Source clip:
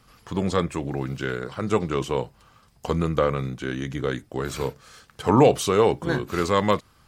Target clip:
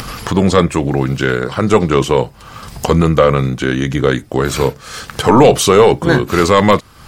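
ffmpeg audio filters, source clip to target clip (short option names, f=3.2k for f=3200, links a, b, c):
-af "apsyclip=14.5dB,acompressor=mode=upward:threshold=-12dB:ratio=2.5,volume=-1.5dB"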